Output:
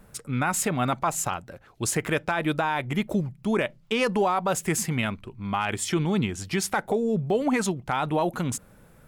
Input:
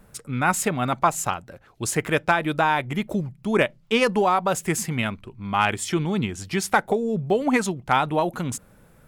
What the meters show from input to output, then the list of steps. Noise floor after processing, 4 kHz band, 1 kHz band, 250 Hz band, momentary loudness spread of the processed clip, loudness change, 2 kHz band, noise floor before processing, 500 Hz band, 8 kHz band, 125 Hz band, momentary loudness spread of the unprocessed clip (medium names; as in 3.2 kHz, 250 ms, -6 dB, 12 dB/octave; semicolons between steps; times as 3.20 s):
-54 dBFS, -2.5 dB, -5.0 dB, -1.5 dB, 7 LU, -3.0 dB, -4.5 dB, -54 dBFS, -3.0 dB, 0.0 dB, -1.0 dB, 8 LU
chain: peak limiter -14.5 dBFS, peak gain reduction 8 dB